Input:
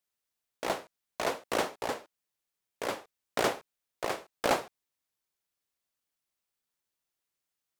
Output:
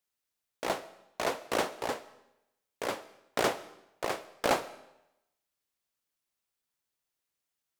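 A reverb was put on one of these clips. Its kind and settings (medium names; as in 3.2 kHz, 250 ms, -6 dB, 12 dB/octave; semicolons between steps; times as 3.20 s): algorithmic reverb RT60 0.87 s, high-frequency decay 0.95×, pre-delay 90 ms, DRR 19.5 dB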